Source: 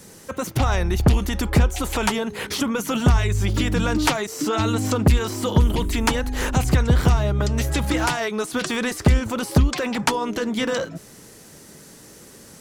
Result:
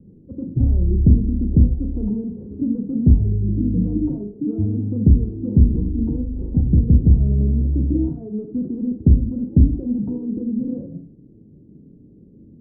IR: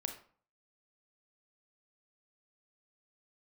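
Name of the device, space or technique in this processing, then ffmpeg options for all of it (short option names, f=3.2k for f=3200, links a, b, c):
next room: -filter_complex "[0:a]lowpass=f=310:w=0.5412,lowpass=f=310:w=1.3066[a];[1:a]atrim=start_sample=2205[b];[a][b]afir=irnorm=-1:irlink=0,volume=4.5dB"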